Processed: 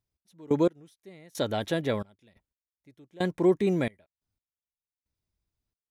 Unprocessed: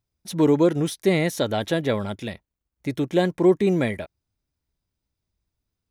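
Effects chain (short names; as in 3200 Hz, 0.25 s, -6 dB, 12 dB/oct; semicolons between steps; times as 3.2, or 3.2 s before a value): step gate "x..x....xxx" 89 bpm -24 dB; gain -5 dB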